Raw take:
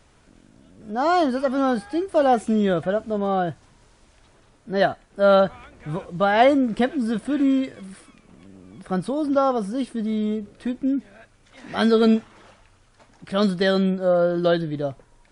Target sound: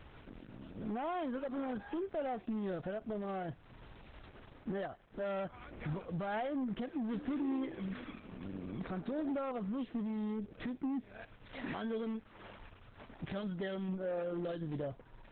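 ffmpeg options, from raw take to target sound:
ffmpeg -i in.wav -filter_complex "[0:a]acompressor=threshold=-38dB:ratio=3,alimiter=level_in=6.5dB:limit=-24dB:level=0:latency=1:release=157,volume=-6.5dB,asoftclip=type=hard:threshold=-36dB,asettb=1/sr,asplit=3[link_01][link_02][link_03];[link_01]atrim=end=7.034[link_04];[link_02]atrim=start=7.03:end=9.32,asetpts=PTS-STARTPTS,afade=type=in:duration=0.004:curve=qsin,afade=type=out:start_time=2.286:duration=0.004:curve=qsin,asplit=5[link_05][link_06][link_07][link_08][link_09];[link_06]adelay=103,afreqshift=58,volume=-11.5dB[link_10];[link_07]adelay=206,afreqshift=116,volume=-19.2dB[link_11];[link_08]adelay=309,afreqshift=174,volume=-27dB[link_12];[link_09]adelay=412,afreqshift=232,volume=-34.7dB[link_13];[link_05][link_10][link_11][link_12][link_13]amix=inputs=5:normalize=0,atrim=end_sample=100989[link_14];[link_03]atrim=start=9.316[link_15];[link_04][link_14]acrossfade=duration=0.004:curve1=hsin:curve2=qsin[link_16];[link_16][link_15]acrossfade=duration=0.004:curve1=qsin:curve2=hsin,aresample=8000,aresample=44100,volume=3.5dB" -ar 48000 -c:a libopus -b:a 8k out.opus

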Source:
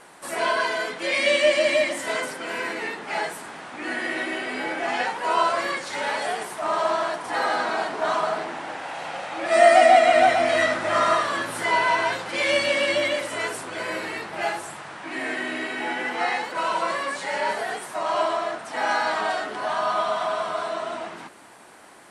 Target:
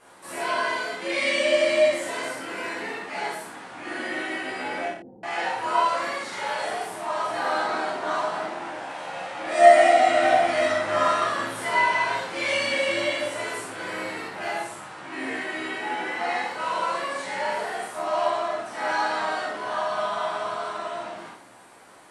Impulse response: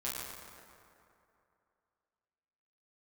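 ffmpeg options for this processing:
-filter_complex "[0:a]asettb=1/sr,asplit=3[link_01][link_02][link_03];[link_01]atrim=end=4.854[link_04];[link_02]atrim=start=4.85:end=7.23,asetpts=PTS-STARTPTS,afade=type=in:duration=0.004:curve=qsin,afade=type=out:start_time=2.376:duration=0.004:curve=qsin,acrossover=split=330[link_05][link_06];[link_06]adelay=380[link_07];[link_05][link_07]amix=inputs=2:normalize=0,atrim=end_sample=104958[link_08];[link_03]atrim=start=7.226[link_09];[link_04][link_08]acrossfade=duration=0.004:curve1=hsin:curve2=qsin[link_10];[link_10][link_09]acrossfade=duration=0.004:curve1=qsin:curve2=hsin[link_11];[1:a]atrim=start_sample=2205,atrim=end_sample=4410,asetrate=26019,aresample=44100[link_12];[link_11][link_12]afir=irnorm=-1:irlink=0,volume=-6.5dB"

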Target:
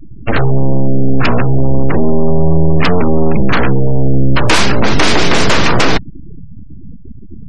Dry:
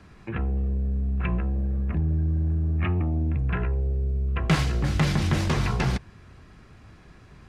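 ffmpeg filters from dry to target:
ffmpeg -i in.wav -af "aeval=exprs='abs(val(0))':channel_layout=same,apsyclip=25dB,afftfilt=real='re*gte(hypot(re,im),0.158)':imag='im*gte(hypot(re,im),0.158)':win_size=1024:overlap=0.75,volume=-2.5dB" out.wav

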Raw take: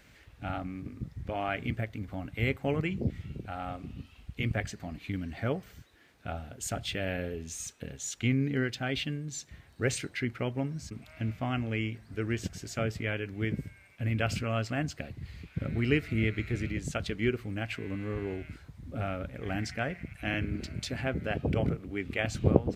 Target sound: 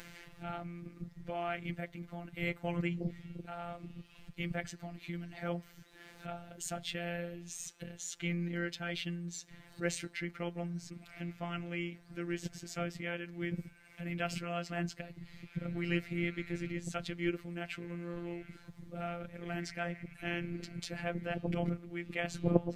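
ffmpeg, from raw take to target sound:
ffmpeg -i in.wav -af "acompressor=mode=upward:threshold=-36dB:ratio=2.5,afftfilt=real='hypot(re,im)*cos(PI*b)':imag='0':win_size=1024:overlap=0.75,volume=-1.5dB" out.wav

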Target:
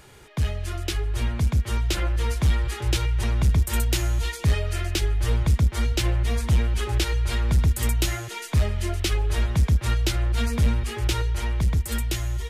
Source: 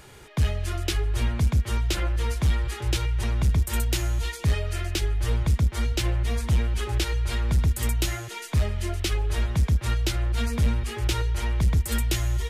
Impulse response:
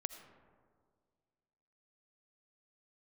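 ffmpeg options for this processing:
-af "dynaudnorm=framelen=470:gausssize=7:maxgain=3.5dB,volume=-1.5dB"

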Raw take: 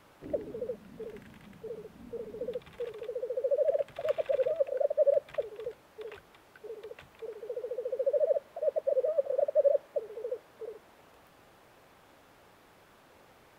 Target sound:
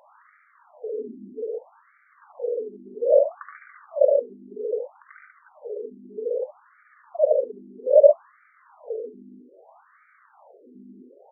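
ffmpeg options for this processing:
ffmpeg -i in.wav -filter_complex "[0:a]atempo=1.2,tiltshelf=frequency=720:gain=6,bandreject=frequency=50:width_type=h:width=6,bandreject=frequency=100:width_type=h:width=6,bandreject=frequency=150:width_type=h:width=6,bandreject=frequency=200:width_type=h:width=6,bandreject=frequency=250:width_type=h:width=6,bandreject=frequency=300:width_type=h:width=6,bandreject=frequency=350:width_type=h:width=6,bandreject=frequency=400:width_type=h:width=6,bandreject=frequency=450:width_type=h:width=6,bandreject=frequency=500:width_type=h:width=6,asplit=2[link_01][link_02];[link_02]aecho=0:1:74|95|115|138:0.631|0.316|0.398|0.501[link_03];[link_01][link_03]amix=inputs=2:normalize=0,aeval=exprs='val(0)+0.00891*(sin(2*PI*50*n/s)+sin(2*PI*2*50*n/s)/2+sin(2*PI*3*50*n/s)/3+sin(2*PI*4*50*n/s)/4+sin(2*PI*5*50*n/s)/5)':channel_layout=same,afftfilt=real='re*between(b*sr/1024,270*pow(1700/270,0.5+0.5*sin(2*PI*0.62*pts/sr))/1.41,270*pow(1700/270,0.5+0.5*sin(2*PI*0.62*pts/sr))*1.41)':imag='im*between(b*sr/1024,270*pow(1700/270,0.5+0.5*sin(2*PI*0.62*pts/sr))/1.41,270*pow(1700/270,0.5+0.5*sin(2*PI*0.62*pts/sr))*1.41)':win_size=1024:overlap=0.75,volume=9dB" out.wav

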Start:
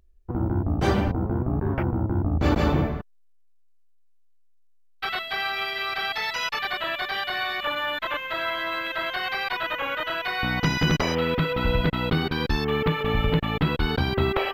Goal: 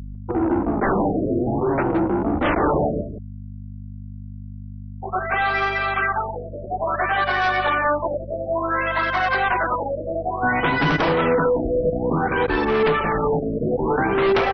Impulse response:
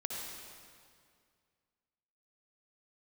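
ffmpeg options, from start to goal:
-filter_complex "[0:a]afftfilt=real='re*gte(hypot(re,im),0.00631)':imag='im*gte(hypot(re,im),0.00631)':win_size=1024:overlap=0.75,acrossover=split=250 2000:gain=0.141 1 0.0794[link_01][link_02][link_03];[link_01][link_02][link_03]amix=inputs=3:normalize=0,flanger=delay=0.5:depth=8.1:regen=4:speed=0.33:shape=triangular,aeval=exprs='val(0)+0.00447*(sin(2*PI*50*n/s)+sin(2*PI*2*50*n/s)/2+sin(2*PI*3*50*n/s)/3+sin(2*PI*4*50*n/s)/4+sin(2*PI*5*50*n/s)/5)':channel_layout=same,aeval=exprs='0.168*sin(PI/2*3.55*val(0)/0.168)':channel_layout=same,asplit=2[link_04][link_05];[link_05]adelay=169.1,volume=-8dB,highshelf=frequency=4000:gain=-3.8[link_06];[link_04][link_06]amix=inputs=2:normalize=0,afftfilt=real='re*lt(b*sr/1024,650*pow(6200/650,0.5+0.5*sin(2*PI*0.57*pts/sr)))':imag='im*lt(b*sr/1024,650*pow(6200/650,0.5+0.5*sin(2*PI*0.57*pts/sr)))':win_size=1024:overlap=0.75"

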